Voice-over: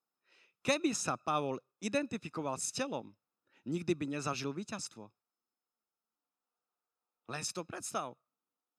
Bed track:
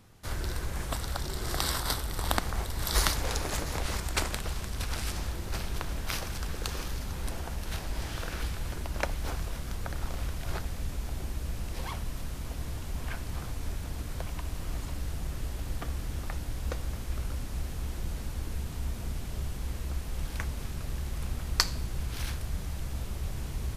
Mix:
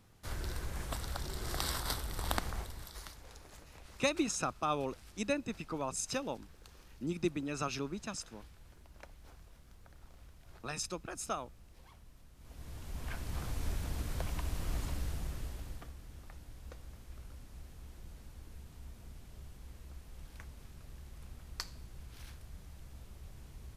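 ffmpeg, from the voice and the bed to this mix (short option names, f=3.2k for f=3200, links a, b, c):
-filter_complex "[0:a]adelay=3350,volume=-0.5dB[a];[1:a]volume=15dB,afade=t=out:st=2.47:d=0.46:silence=0.149624,afade=t=in:st=12.36:d=1.24:silence=0.0891251,afade=t=out:st=14.86:d=1.08:silence=0.188365[b];[a][b]amix=inputs=2:normalize=0"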